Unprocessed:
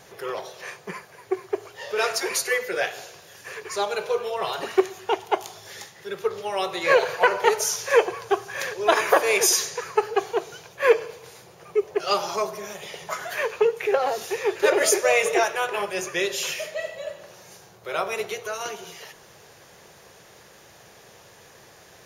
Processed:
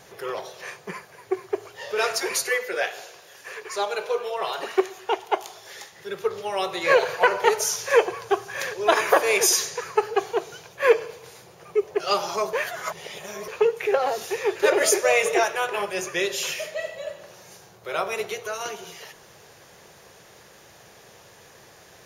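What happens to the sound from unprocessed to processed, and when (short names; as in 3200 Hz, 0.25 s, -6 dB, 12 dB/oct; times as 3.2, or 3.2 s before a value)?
2.49–5.93 tone controls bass -11 dB, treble -2 dB
12.53–13.48 reverse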